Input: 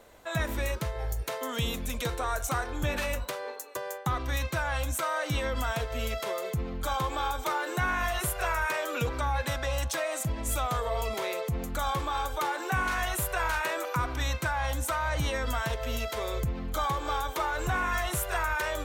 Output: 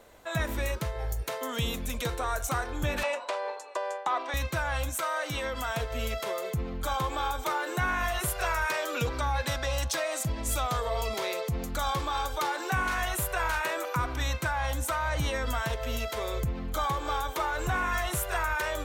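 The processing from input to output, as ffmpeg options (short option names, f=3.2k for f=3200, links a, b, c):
-filter_complex "[0:a]asettb=1/sr,asplit=3[a][b][c];[a]atrim=end=3.034[d];[b]atrim=start=3.03:end=4.34,asetpts=PTS-STARTPTS,afade=t=in:d=0.004:c=qsin,afade=t=out:st=1.306:d=0.004:c=qsin,highpass=f=340:w=0.5412,highpass=f=340:w=1.3066,equalizer=f=450:t=q:w=4:g=-4,equalizer=f=650:t=q:w=4:g=9,equalizer=f=940:t=q:w=4:g=8,equalizer=f=2.5k:t=q:w=4:g=3,equalizer=f=6.3k:t=q:w=4:g=-5,lowpass=f=7.8k:w=0.5412,lowpass=f=7.8k:w=1.3066[e];[c]atrim=start=4.336[f];[d][e]acrossfade=d=0.004:c1=hsin:c2=qsin[g];[g][f]acrossfade=d=0.004:c1=qsin:c2=hsin,asettb=1/sr,asplit=3[h][i][j];[h]atrim=end=4.894[k];[i]atrim=start=4.89:end=5.74,asetpts=PTS-STARTPTS,afade=t=in:d=0.004:c=qsin,afade=t=out:st=0.846:d=0.004:c=qsin,lowshelf=f=250:g=-8[l];[j]atrim=start=5.736[m];[k][l]acrossfade=d=0.004:c1=hsin:c2=qsin[n];[n][m]acrossfade=d=0.004:c1=qsin:c2=hsin,asettb=1/sr,asplit=3[o][p][q];[o]atrim=end=8.284[r];[p]atrim=start=8.28:end=12.75,asetpts=PTS-STARTPTS,afade=t=in:d=0.004:c=qsin,afade=t=out:st=4.466:d=0.004:c=qsin,equalizer=f=4.8k:w=1.5:g=5[s];[q]atrim=start=12.746[t];[r][s]acrossfade=d=0.004:c1=hsin:c2=qsin[u];[u][t]acrossfade=d=0.004:c1=qsin:c2=hsin"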